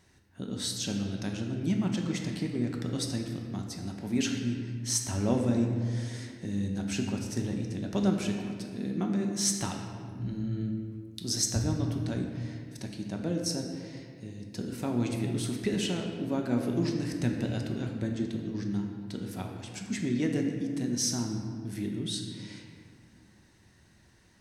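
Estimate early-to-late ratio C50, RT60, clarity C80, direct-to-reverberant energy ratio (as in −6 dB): 4.0 dB, 2.1 s, 5.5 dB, 1.5 dB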